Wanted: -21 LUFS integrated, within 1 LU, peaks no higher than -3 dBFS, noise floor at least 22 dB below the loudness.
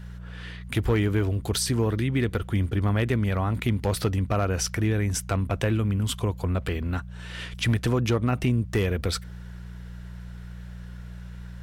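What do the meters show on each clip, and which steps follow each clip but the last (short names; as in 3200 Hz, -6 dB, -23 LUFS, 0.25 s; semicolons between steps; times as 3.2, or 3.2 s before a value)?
clipped 0.3%; flat tops at -16.0 dBFS; hum 60 Hz; harmonics up to 180 Hz; hum level -37 dBFS; loudness -26.0 LUFS; peak -16.0 dBFS; loudness target -21.0 LUFS
-> clip repair -16 dBFS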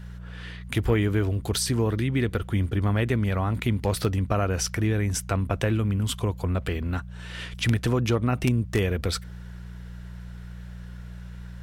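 clipped 0.0%; hum 60 Hz; harmonics up to 180 Hz; hum level -37 dBFS
-> de-hum 60 Hz, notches 3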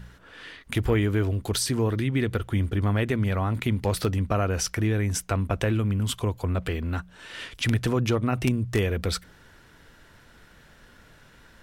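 hum none; loudness -26.0 LUFS; peak -6.5 dBFS; loudness target -21.0 LUFS
-> gain +5 dB; limiter -3 dBFS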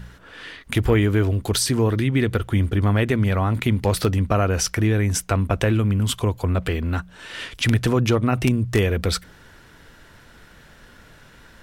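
loudness -21.0 LUFS; peak -3.0 dBFS; noise floor -49 dBFS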